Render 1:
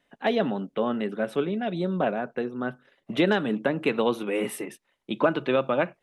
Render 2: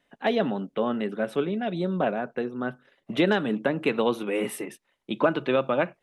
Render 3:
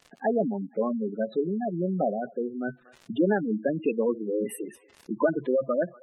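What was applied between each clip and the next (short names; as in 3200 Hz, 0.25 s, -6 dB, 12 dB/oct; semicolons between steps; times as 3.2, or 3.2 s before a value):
nothing audible
thinning echo 0.236 s, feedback 50%, high-pass 630 Hz, level -22.5 dB; crackle 170/s -35 dBFS; spectral gate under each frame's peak -10 dB strong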